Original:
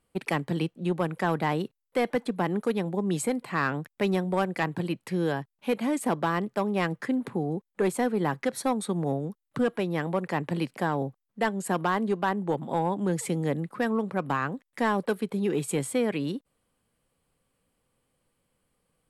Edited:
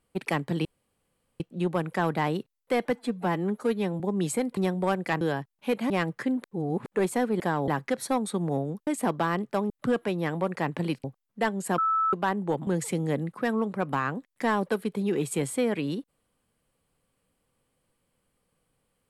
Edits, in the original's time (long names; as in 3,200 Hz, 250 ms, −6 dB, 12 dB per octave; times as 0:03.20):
0:00.65: splice in room tone 0.75 s
0:02.20–0:02.90: time-stretch 1.5×
0:03.47–0:04.07: remove
0:04.71–0:05.21: remove
0:05.90–0:06.73: move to 0:09.42
0:07.27–0:07.69: reverse
0:10.76–0:11.04: move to 0:08.23
0:11.78–0:12.13: beep over 1,310 Hz −21.5 dBFS
0:12.67–0:13.04: remove